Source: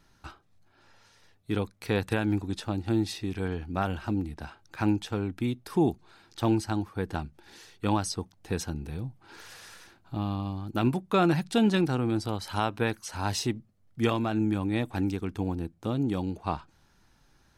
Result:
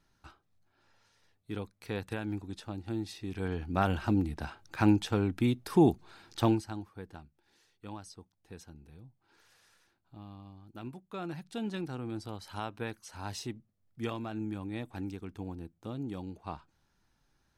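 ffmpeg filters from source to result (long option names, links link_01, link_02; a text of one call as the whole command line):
ffmpeg -i in.wav -af "volume=9dB,afade=type=in:start_time=3.15:duration=0.76:silence=0.298538,afade=type=out:start_time=6.41:duration=0.21:silence=0.298538,afade=type=out:start_time=6.62:duration=0.62:silence=0.375837,afade=type=in:start_time=11.08:duration=1.16:silence=0.421697" out.wav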